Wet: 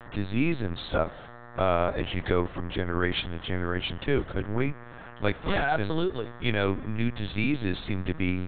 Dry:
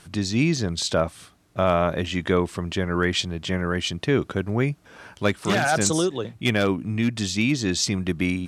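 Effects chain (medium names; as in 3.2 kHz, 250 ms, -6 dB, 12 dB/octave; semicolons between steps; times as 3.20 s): mains buzz 120 Hz, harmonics 16, -43 dBFS -1 dB/octave; spring tank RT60 2.3 s, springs 44 ms, chirp 35 ms, DRR 19 dB; LPC vocoder at 8 kHz pitch kept; trim -4 dB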